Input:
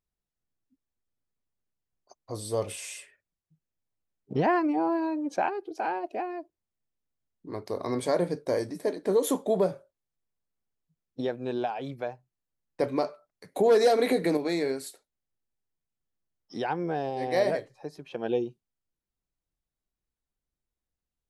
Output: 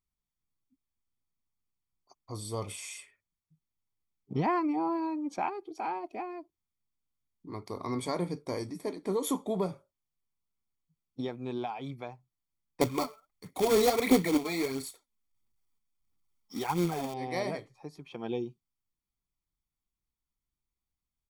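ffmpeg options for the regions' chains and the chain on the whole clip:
-filter_complex "[0:a]asettb=1/sr,asplit=3[a][b][c];[a]atrim=end=12.814[d];[b]atrim=start=12.81:end=17.14,asetpts=PTS-STARTPTS,afade=t=in:d=0.004:c=qsin,afade=t=out:st=4.326:d=0.004:c=qsin,aphaser=in_gain=1:out_gain=1:delay=4.7:decay=0.61:speed=1.5:type=sinusoidal,acrusher=bits=3:mode=log:mix=0:aa=0.000001[e];[c]atrim=start=17.136[f];[d][e]acrossfade=d=0.004:c1=hsin:c2=qsin[g];[g][f]acrossfade=d=0.004:c1=qsin:c2=hsin,bandreject=f=1.5k:w=12,aecho=1:1:0.9:0.56,volume=-4dB"

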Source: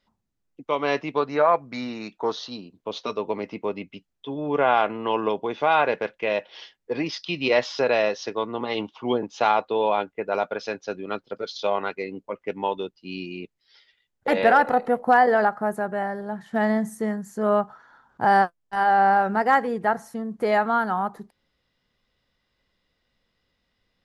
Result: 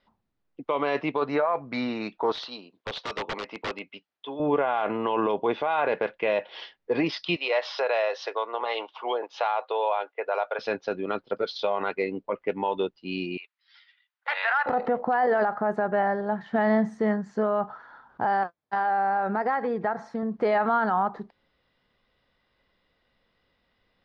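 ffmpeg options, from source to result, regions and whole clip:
-filter_complex "[0:a]asettb=1/sr,asplit=3[a][b][c];[a]atrim=end=2.324[d];[b]atrim=start=2.32:end=4.4,asetpts=PTS-STARTPTS,afade=t=in:d=0.004:c=qsin,afade=t=out:st=2.076:d=0.004:c=qsin,highpass=f=820:p=1,aeval=exprs='(mod(23.7*val(0)+1,2)-1)/23.7':c=same[e];[c]atrim=start=4.396[f];[d][e]acrossfade=d=0.004:c1=hsin:c2=qsin[g];[g][f]acrossfade=d=0.004:c1=qsin:c2=hsin,asettb=1/sr,asplit=3[h][i][j];[h]atrim=end=7.364[k];[i]atrim=start=7.36:end=10.59,asetpts=PTS-STARTPTS,afade=t=in:d=0.004:c=qsin,afade=t=out:st=3.226:d=0.004:c=qsin,highpass=f=490:w=0.5412,highpass=f=490:w=1.3066,acompressor=threshold=-29dB:ratio=2.5:attack=3.2:release=140:knee=1:detection=peak[l];[j]atrim=start=10.586[m];[k][l]acrossfade=d=0.004:c1=hsin:c2=qsin[n];[n][m]acrossfade=d=0.004:c1=qsin:c2=hsin,asettb=1/sr,asplit=3[o][p][q];[o]atrim=end=13.374[r];[p]atrim=start=13.37:end=14.66,asetpts=PTS-STARTPTS,afade=t=in:d=0.004:c=qsin,afade=t=out:st=1.286:d=0.004:c=qsin,highpass=f=1.1k:w=0.5412,highpass=f=1.1k:w=1.3066,highshelf=f=4.8k:g=-4.5[s];[q]atrim=start=14.656[t];[r][s]acrossfade=d=0.004:c1=hsin:c2=qsin[u];[u][t]acrossfade=d=0.004:c1=qsin:c2=hsin,asettb=1/sr,asplit=3[v][w][x];[v]atrim=end=18.434[y];[w]atrim=start=18.43:end=20.23,asetpts=PTS-STARTPTS,afade=t=in:d=0.004:c=qsin,afade=t=out:st=1.796:d=0.004:c=qsin,bandreject=f=2.9k:w=8.2,acompressor=threshold=-27dB:ratio=6:attack=3.2:release=140:knee=1:detection=peak,highpass=73[z];[x]atrim=start=20.226[aa];[y][z]acrossfade=d=0.004:c1=hsin:c2=qsin[ab];[ab][aa]acrossfade=d=0.004:c1=qsin:c2=hsin,lowpass=f=4.7k:w=0.5412,lowpass=f=4.7k:w=1.3066,equalizer=f=820:w=0.41:g=5.5,alimiter=limit=-15.5dB:level=0:latency=1:release=32"

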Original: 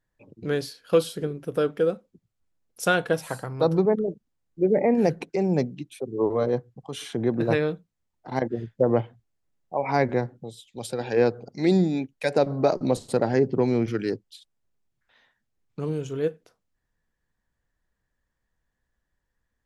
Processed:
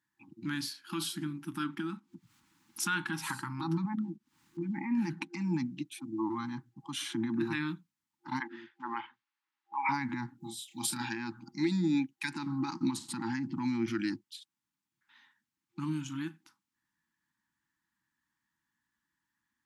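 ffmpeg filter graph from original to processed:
-filter_complex "[0:a]asettb=1/sr,asplit=3[a][b][c];[a]atrim=end=1.644[d];[b]atrim=start=1.64:end=5.65,asetpts=PTS-STARTPTS,afade=t=in:d=0.004:c=qsin,afade=t=out:st=4.006:d=0.004:c=qsin,agate=range=-10dB:threshold=-44dB:ratio=16:release=100:detection=peak,highshelf=f=7.3k:g=-7,acompressor=mode=upward:threshold=-26dB:ratio=2.5:attack=3.2:release=140:knee=2.83:detection=peak[e];[c]atrim=start=5.646[f];[d][e]acrossfade=d=0.004:c1=hsin:c2=qsin[g];[g][f]acrossfade=d=0.004:c1=qsin:c2=hsin,asettb=1/sr,asplit=3[h][i][j];[h]atrim=end=8.404[k];[i]atrim=start=8.4:end=9.89,asetpts=PTS-STARTPTS,afade=t=in:d=0.004:c=qsin,afade=t=out:st=1.486:d=0.004:c=qsin,highpass=750,lowpass=3.4k,acontrast=36[l];[j]atrim=start=9.886[m];[k][l]acrossfade=d=0.004:c1=hsin:c2=qsin[n];[n][m]acrossfade=d=0.004:c1=qsin:c2=hsin,asettb=1/sr,asplit=3[o][p][q];[o]atrim=end=10.404[r];[p]atrim=start=10.4:end=11.09,asetpts=PTS-STARTPTS,afade=t=in:d=0.004:c=qsin,afade=t=out:st=0.686:d=0.004:c=qsin,highshelf=f=8.6k:g=11.5,asplit=2[s][t];[t]adelay=32,volume=-3.5dB[u];[s][u]amix=inputs=2:normalize=0,atrim=end_sample=30429[v];[q]atrim=start=11.086[w];[r][v]acrossfade=d=0.004:c1=hsin:c2=qsin[x];[x][w]acrossfade=d=0.004:c1=qsin:c2=hsin,alimiter=limit=-18.5dB:level=0:latency=1:release=42,highpass=210,afftfilt=real='re*(1-between(b*sr/4096,350,800))':imag='im*(1-between(b*sr/4096,350,800))':win_size=4096:overlap=0.75"

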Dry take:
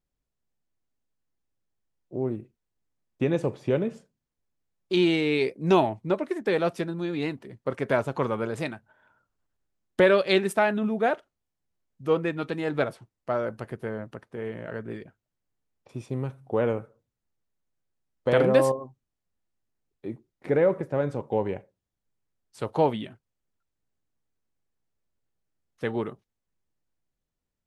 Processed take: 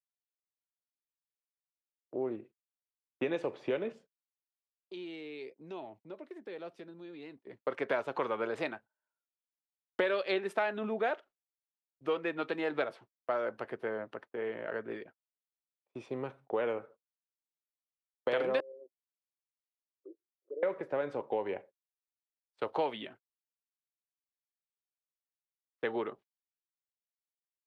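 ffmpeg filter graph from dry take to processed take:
-filter_complex "[0:a]asettb=1/sr,asplit=3[a][b][c];[a]atrim=end=3.924[d];[b]atrim=start=3.92:end=7.47,asetpts=PTS-STARTPTS,afade=t=in:d=0.004:c=qsin,afade=t=out:st=3.546:d=0.004:c=qsin,equalizer=f=1.2k:w=0.38:g=-9,acompressor=threshold=-44dB:ratio=2.5:attack=3.2:release=140:knee=1:detection=peak[e];[c]atrim=start=7.466[f];[d][e]acrossfade=d=0.004:c1=hsin:c2=qsin[g];[g][f]acrossfade=d=0.004:c1=qsin:c2=hsin,asettb=1/sr,asplit=3[h][i][j];[h]atrim=end=18.604[k];[i]atrim=start=18.6:end=20.63,asetpts=PTS-STARTPTS,afade=t=in:d=0.004:c=qsin,afade=t=out:st=2.026:d=0.004:c=qsin,acompressor=threshold=-48dB:ratio=2:attack=3.2:release=140:knee=1:detection=peak,asuperpass=centerf=420:order=8:qfactor=1.6[l];[j]atrim=start=20.626[m];[k][l]acrossfade=d=0.004:c1=hsin:c2=qsin[n];[n][m]acrossfade=d=0.004:c1=qsin:c2=hsin,agate=range=-31dB:threshold=-47dB:ratio=16:detection=peak,acrossover=split=300 4300:gain=0.112 1 0.126[o][p][q];[o][p][q]amix=inputs=3:normalize=0,acrossover=split=1700|4100[r][s][t];[r]acompressor=threshold=-30dB:ratio=4[u];[s]acompressor=threshold=-40dB:ratio=4[v];[t]acompressor=threshold=-49dB:ratio=4[w];[u][v][w]amix=inputs=3:normalize=0"

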